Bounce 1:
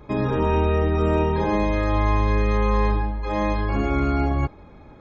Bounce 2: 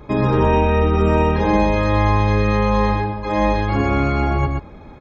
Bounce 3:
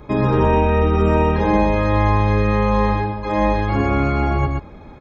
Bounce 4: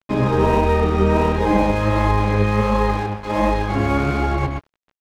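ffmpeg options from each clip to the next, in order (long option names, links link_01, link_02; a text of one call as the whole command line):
ffmpeg -i in.wav -af "aecho=1:1:124:0.562,volume=5dB" out.wav
ffmpeg -i in.wav -filter_complex "[0:a]acrossover=split=2700[link_01][link_02];[link_02]acompressor=threshold=-40dB:ratio=4:attack=1:release=60[link_03];[link_01][link_03]amix=inputs=2:normalize=0" out.wav
ffmpeg -i in.wav -af "flanger=delay=2.1:depth=8.8:regen=54:speed=1.4:shape=sinusoidal,aeval=exprs='sgn(val(0))*max(abs(val(0))-0.0168,0)':channel_layout=same,volume=4.5dB" out.wav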